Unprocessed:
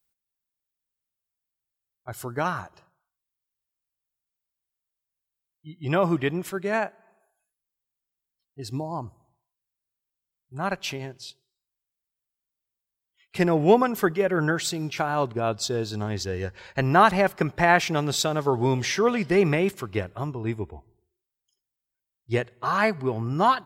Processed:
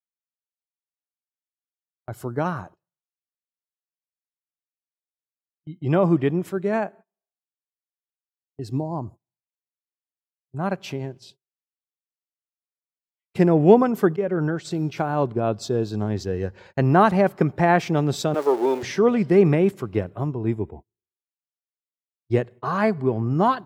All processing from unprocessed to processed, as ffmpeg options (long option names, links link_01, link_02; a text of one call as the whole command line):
ffmpeg -i in.wav -filter_complex "[0:a]asettb=1/sr,asplit=3[link_01][link_02][link_03];[link_01]atrim=end=14.164[link_04];[link_02]atrim=start=14.16:end=14.71,asetpts=PTS-STARTPTS,afade=type=in:duration=0.004:curve=qsin,afade=type=out:start_time=0.546:duration=0.004:curve=qsin,agate=range=-33dB:threshold=-26dB:ratio=3:release=100:detection=peak,lowpass=9000,acompressor=threshold=-25dB:ratio=2.5:attack=3.2:release=140:knee=1:detection=peak[link_05];[link_03]atrim=start=14.706[link_06];[link_04][link_05]acrossfade=duration=0.004:curve1=hsin:curve2=qsin[link_07];[link_07][link_06]acrossfade=duration=0.004:curve1=qsin:curve2=hsin,asettb=1/sr,asplit=3[link_08][link_09][link_10];[link_08]atrim=end=18.344[link_11];[link_09]atrim=start=18.34:end=18.83,asetpts=PTS-STARTPTS,afade=type=in:duration=0.004:curve=qsin,afade=type=out:start_time=0.486:duration=0.004:curve=qsin,aeval=exprs='val(0)+0.5*0.0422*sgn(val(0))':channel_layout=same,highpass=frequency=340:width=0.5412,highpass=frequency=340:width=1.3066[link_12];[link_10]atrim=start=18.826[link_13];[link_11][link_12]acrossfade=duration=0.004:curve1=hsin:curve2=qsin[link_14];[link_14][link_13]acrossfade=duration=0.004:curve1=qsin:curve2=hsin,highpass=110,agate=range=-30dB:threshold=-45dB:ratio=16:detection=peak,tiltshelf=frequency=870:gain=7" out.wav